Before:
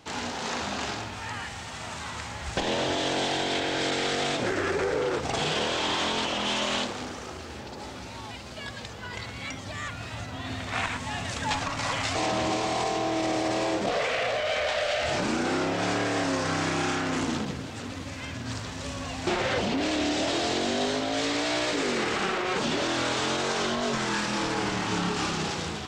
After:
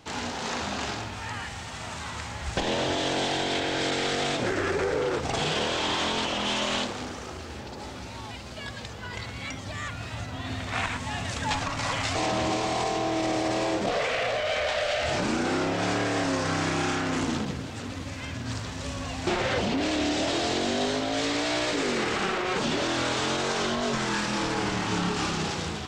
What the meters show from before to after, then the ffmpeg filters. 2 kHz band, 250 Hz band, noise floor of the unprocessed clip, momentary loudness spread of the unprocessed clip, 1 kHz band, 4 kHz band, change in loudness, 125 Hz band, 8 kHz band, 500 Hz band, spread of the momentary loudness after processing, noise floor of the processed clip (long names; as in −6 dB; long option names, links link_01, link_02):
0.0 dB, +0.5 dB, −39 dBFS, 10 LU, 0.0 dB, 0.0 dB, 0.0 dB, +2.0 dB, 0.0 dB, 0.0 dB, 10 LU, −39 dBFS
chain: -af "lowshelf=frequency=110:gain=4.5"